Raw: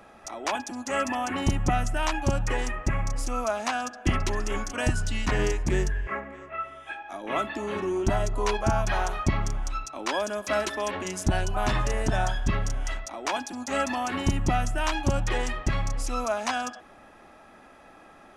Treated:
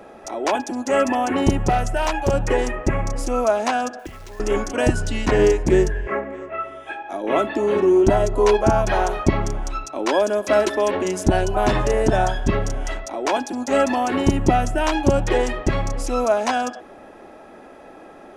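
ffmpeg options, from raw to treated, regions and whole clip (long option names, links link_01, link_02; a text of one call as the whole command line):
ffmpeg -i in.wav -filter_complex "[0:a]asettb=1/sr,asplit=3[link_01][link_02][link_03];[link_01]atrim=end=1.634[link_04];[link_02]atrim=start=1.63:end=2.34,asetpts=PTS-STARTPTS,afade=type=in:duration=0.004:curve=qsin,afade=type=out:start_time=0.706:duration=0.004:curve=qsin,equalizer=frequency=280:width_type=o:width=0.35:gain=-14,asoftclip=type=hard:threshold=-19.5dB[link_05];[link_03]atrim=start=2.336[link_06];[link_04][link_05]acrossfade=duration=0.004:curve1=hsin:curve2=qsin[link_07];[link_07][link_06]acrossfade=duration=0.004:curve1=qsin:curve2=hsin,asettb=1/sr,asplit=3[link_08][link_09][link_10];[link_08]atrim=end=3.994[link_11];[link_09]atrim=start=3.99:end=4.4,asetpts=PTS-STARTPTS,afade=type=in:duration=0.004:curve=qsin,afade=type=out:start_time=0.406:duration=0.004:curve=qsin,equalizer=frequency=310:width=0.79:gain=-10.5,acompressor=threshold=-39dB:ratio=10:attack=3.2:release=140:knee=1:detection=peak,acrusher=bits=3:mode=log:mix=0:aa=0.000001[link_12];[link_10]atrim=start=4.396[link_13];[link_11][link_12]acrossfade=duration=0.004:curve1=hsin:curve2=qsin[link_14];[link_14][link_13]acrossfade=duration=0.004:curve1=qsin:curve2=hsin,equalizer=frequency=420:width_type=o:width=1.7:gain=11,bandreject=frequency=1200:width=15,volume=3dB" out.wav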